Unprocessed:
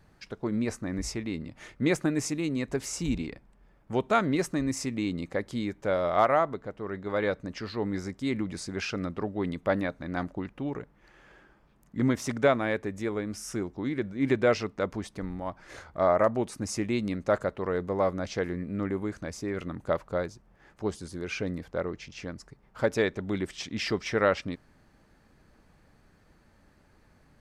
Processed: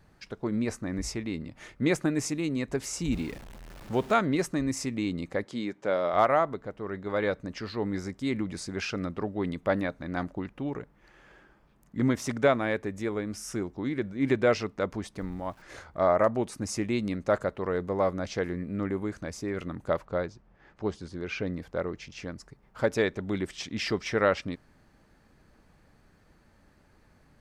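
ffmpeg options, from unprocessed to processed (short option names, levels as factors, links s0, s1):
-filter_complex "[0:a]asettb=1/sr,asplit=3[s0][s1][s2];[s0]atrim=end=3.124[s3];[s1]atrim=start=3.12:end=4.14,asetpts=PTS-STARTPTS,afade=t=in:d=0.004:c=qsin,afade=t=out:st=1.016:d=0.004:c=qsin,aeval=exprs='val(0)+0.5*0.00891*sgn(val(0))':c=same[s4];[s2]atrim=start=4.136[s5];[s3][s4]acrossfade=d=0.004:c1=hsin:c2=qsin[s6];[s6][s5]acrossfade=d=0.004:c1=qsin:c2=hsin,asettb=1/sr,asplit=3[s7][s8][s9];[s7]atrim=end=5.444[s10];[s8]atrim=start=5.44:end=6.14,asetpts=PTS-STARTPTS,afade=t=in:d=0.004:c=qsin,afade=t=out:st=0.696:d=0.004:c=qsin,highpass=190,lowpass=7700[s11];[s9]atrim=start=6.136[s12];[s10][s11]acrossfade=d=0.004:c1=hsin:c2=qsin[s13];[s13][s12]acrossfade=d=0.004:c1=qsin:c2=hsin,asettb=1/sr,asplit=3[s14][s15][s16];[s14]atrim=end=15.184[s17];[s15]atrim=start=15.18:end=15.62,asetpts=PTS-STARTPTS,afade=t=in:d=0.004:c=qsin,afade=t=out:st=0.436:d=0.004:c=qsin,aeval=exprs='val(0)*gte(abs(val(0)),0.00158)':c=same[s18];[s16]atrim=start=15.616[s19];[s17][s18]acrossfade=d=0.004:c1=hsin:c2=qsin[s20];[s20][s19]acrossfade=d=0.004:c1=qsin:c2=hsin,asettb=1/sr,asplit=3[s21][s22][s23];[s21]atrim=end=20.054[s24];[s22]atrim=start=20.05:end=21.58,asetpts=PTS-STARTPTS,afade=t=in:d=0.004:c=qsin,afade=t=out:st=1.526:d=0.004:c=qsin,lowpass=4700[s25];[s23]atrim=start=21.576[s26];[s24][s25]acrossfade=d=0.004:c1=hsin:c2=qsin[s27];[s27][s26]acrossfade=d=0.004:c1=qsin:c2=hsin"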